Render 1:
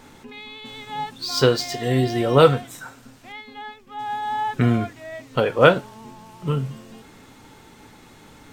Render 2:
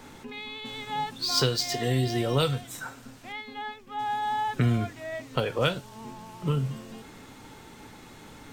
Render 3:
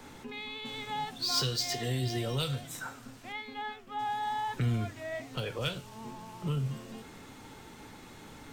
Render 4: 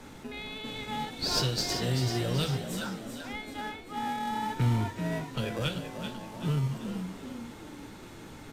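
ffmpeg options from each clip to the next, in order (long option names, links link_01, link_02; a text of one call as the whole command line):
ffmpeg -i in.wav -filter_complex "[0:a]acrossover=split=120|3000[link_01][link_02][link_03];[link_02]acompressor=threshold=-26dB:ratio=5[link_04];[link_01][link_04][link_03]amix=inputs=3:normalize=0" out.wav
ffmpeg -i in.wav -filter_complex "[0:a]acrossover=split=130|2400[link_01][link_02][link_03];[link_02]alimiter=level_in=1.5dB:limit=-24dB:level=0:latency=1:release=233,volume=-1.5dB[link_04];[link_01][link_04][link_03]amix=inputs=3:normalize=0,asoftclip=type=tanh:threshold=-18dB,flanger=delay=9.1:depth=7.1:regen=-86:speed=1.1:shape=triangular,volume=2.5dB" out.wav
ffmpeg -i in.wav -filter_complex "[0:a]asplit=2[link_01][link_02];[link_02]acrusher=samples=41:mix=1:aa=0.000001,volume=-6dB[link_03];[link_01][link_03]amix=inputs=2:normalize=0,asplit=7[link_04][link_05][link_06][link_07][link_08][link_09][link_10];[link_05]adelay=386,afreqshift=51,volume=-8dB[link_11];[link_06]adelay=772,afreqshift=102,volume=-14.4dB[link_12];[link_07]adelay=1158,afreqshift=153,volume=-20.8dB[link_13];[link_08]adelay=1544,afreqshift=204,volume=-27.1dB[link_14];[link_09]adelay=1930,afreqshift=255,volume=-33.5dB[link_15];[link_10]adelay=2316,afreqshift=306,volume=-39.9dB[link_16];[link_04][link_11][link_12][link_13][link_14][link_15][link_16]amix=inputs=7:normalize=0,aresample=32000,aresample=44100" out.wav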